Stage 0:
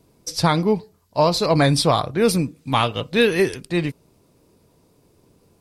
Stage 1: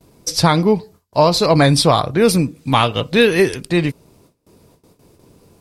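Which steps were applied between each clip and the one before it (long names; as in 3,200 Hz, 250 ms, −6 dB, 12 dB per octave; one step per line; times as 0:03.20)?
in parallel at −0.5 dB: downward compressor, threshold −24 dBFS, peak gain reduction 12 dB
on the sum: noise gate with hold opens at −42 dBFS
level +2 dB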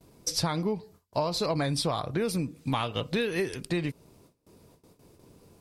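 downward compressor 6 to 1, threshold −19 dBFS, peak gain reduction 11 dB
level −6.5 dB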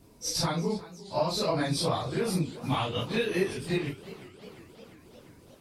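random phases in long frames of 100 ms
feedback echo with a swinging delay time 354 ms, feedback 70%, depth 150 cents, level −18 dB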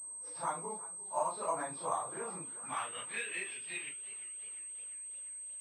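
band-pass filter sweep 1,000 Hz → 2,700 Hz, 0:02.26–0:03.50
switching amplifier with a slow clock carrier 8,300 Hz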